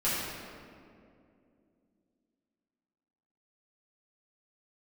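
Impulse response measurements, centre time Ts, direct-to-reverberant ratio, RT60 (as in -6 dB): 0.13 s, -11.0 dB, 2.5 s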